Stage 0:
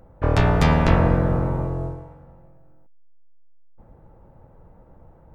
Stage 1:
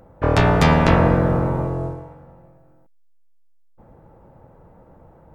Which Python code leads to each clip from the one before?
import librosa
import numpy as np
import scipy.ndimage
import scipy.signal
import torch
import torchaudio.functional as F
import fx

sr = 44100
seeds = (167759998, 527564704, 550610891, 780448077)

y = fx.low_shelf(x, sr, hz=72.0, db=-11.0)
y = y * 10.0 ** (4.5 / 20.0)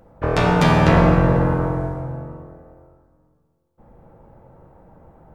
y = fx.rev_plate(x, sr, seeds[0], rt60_s=2.2, hf_ratio=0.65, predelay_ms=0, drr_db=0.0)
y = y * 10.0 ** (-2.5 / 20.0)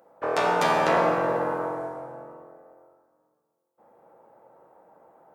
y = scipy.signal.sosfilt(scipy.signal.butter(2, 540.0, 'highpass', fs=sr, output='sos'), x)
y = fx.peak_eq(y, sr, hz=2800.0, db=-6.0, octaves=2.3)